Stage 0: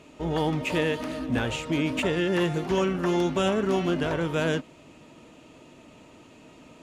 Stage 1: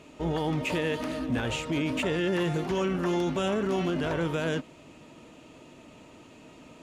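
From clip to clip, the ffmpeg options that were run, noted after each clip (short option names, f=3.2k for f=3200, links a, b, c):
-af "alimiter=limit=-20.5dB:level=0:latency=1:release=15"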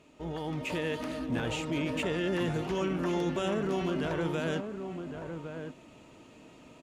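-filter_complex "[0:a]asplit=2[a][b];[b]adelay=1108,volume=-7dB,highshelf=f=4k:g=-24.9[c];[a][c]amix=inputs=2:normalize=0,dynaudnorm=f=110:g=11:m=5dB,volume=-8.5dB"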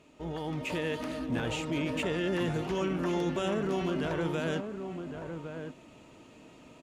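-af anull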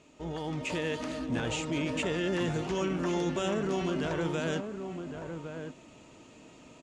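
-af "lowpass=f=7.4k:t=q:w=1.8"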